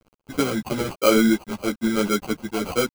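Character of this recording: a quantiser's noise floor 8-bit, dither none; phasing stages 8, 1.1 Hz, lowest notch 520–3400 Hz; aliases and images of a low sample rate 1800 Hz, jitter 0%; a shimmering, thickened sound

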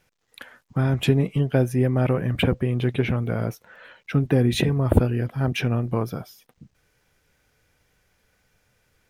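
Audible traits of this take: noise floor -69 dBFS; spectral tilt -7.0 dB/oct

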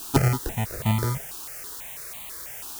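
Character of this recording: aliases and images of a low sample rate 1100 Hz, jitter 0%; chopped level 0.86 Hz, depth 60%, duty 15%; a quantiser's noise floor 8-bit, dither triangular; notches that jump at a steady rate 6.1 Hz 550–1500 Hz

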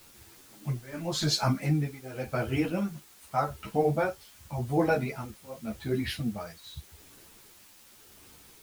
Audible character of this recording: tremolo triangle 0.87 Hz, depth 95%; a quantiser's noise floor 10-bit, dither triangular; a shimmering, thickened sound

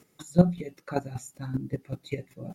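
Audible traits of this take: chopped level 5.2 Hz, depth 65%, duty 15%

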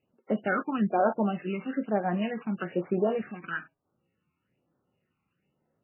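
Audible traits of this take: a buzz of ramps at a fixed pitch in blocks of 8 samples; phasing stages 12, 1.1 Hz, lowest notch 540–3100 Hz; MP3

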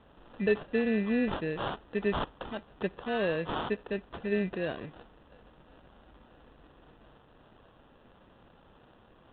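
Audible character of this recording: aliases and images of a low sample rate 2200 Hz, jitter 0%; G.726

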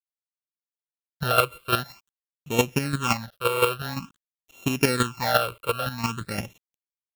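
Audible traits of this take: a buzz of ramps at a fixed pitch in blocks of 32 samples; chopped level 5.8 Hz, depth 60%, duty 15%; a quantiser's noise floor 10-bit, dither none; phasing stages 8, 0.49 Hz, lowest notch 230–1500 Hz

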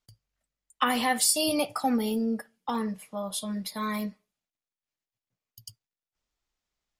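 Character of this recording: noise floor -94 dBFS; spectral tilt -3.5 dB/oct

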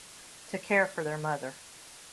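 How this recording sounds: tremolo saw down 5.7 Hz, depth 30%; a quantiser's noise floor 8-bit, dither triangular; AAC

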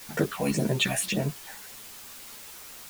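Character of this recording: phasing stages 6, 1.8 Hz, lowest notch 310–3900 Hz; a quantiser's noise floor 8-bit, dither triangular; a shimmering, thickened sound

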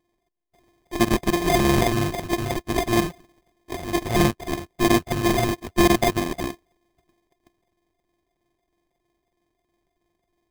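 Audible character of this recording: a buzz of ramps at a fixed pitch in blocks of 128 samples; phasing stages 6, 3.1 Hz, lowest notch 350–1600 Hz; aliases and images of a low sample rate 1400 Hz, jitter 0%

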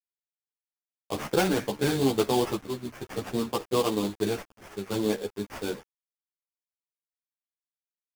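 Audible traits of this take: a quantiser's noise floor 8-bit, dither none; random-step tremolo; aliases and images of a low sample rate 4000 Hz, jitter 20%; a shimmering, thickened sound

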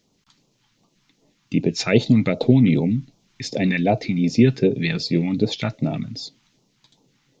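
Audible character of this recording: phasing stages 2, 2.6 Hz, lowest notch 480–1700 Hz

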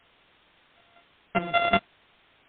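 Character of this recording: a buzz of ramps at a fixed pitch in blocks of 64 samples; chopped level 5.2 Hz, depth 65%, duty 20%; a quantiser's noise floor 10-bit, dither triangular; MP3

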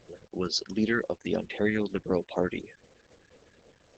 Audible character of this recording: phasing stages 4, 3.9 Hz, lowest notch 690–2200 Hz; a quantiser's noise floor 10-bit, dither none; Opus

